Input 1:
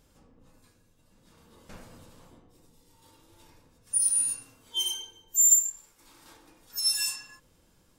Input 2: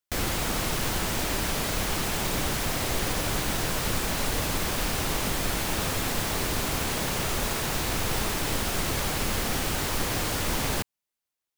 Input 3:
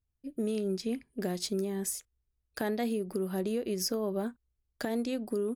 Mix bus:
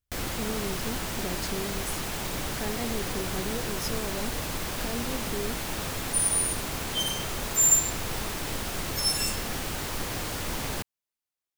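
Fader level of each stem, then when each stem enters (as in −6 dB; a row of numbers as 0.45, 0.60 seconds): −1.0, −4.5, −3.5 decibels; 2.20, 0.00, 0.00 seconds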